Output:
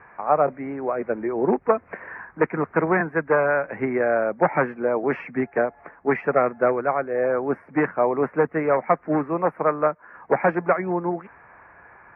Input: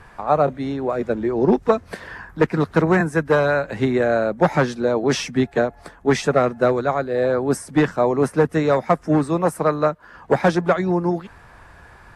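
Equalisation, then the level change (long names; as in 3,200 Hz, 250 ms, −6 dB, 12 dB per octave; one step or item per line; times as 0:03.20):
high-pass filter 390 Hz 6 dB per octave
elliptic low-pass filter 2,300 Hz, stop band 40 dB
0.0 dB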